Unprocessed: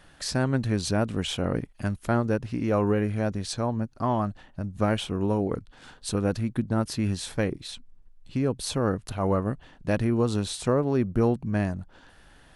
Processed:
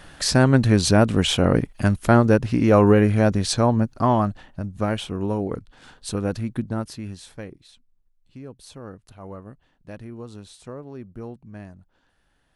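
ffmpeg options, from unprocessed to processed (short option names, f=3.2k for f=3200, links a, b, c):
-af "volume=9dB,afade=t=out:st=3.7:d=1.1:silence=0.375837,afade=t=out:st=6.63:d=0.37:silence=0.421697,afade=t=out:st=7:d=0.73:silence=0.473151"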